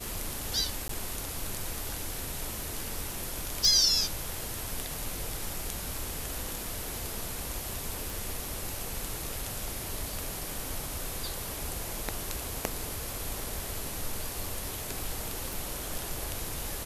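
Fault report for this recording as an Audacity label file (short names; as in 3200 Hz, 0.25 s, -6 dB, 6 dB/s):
0.880000	0.890000	gap 13 ms
3.650000	3.650000	pop
8.100000	8.100000	pop
15.530000	15.530000	pop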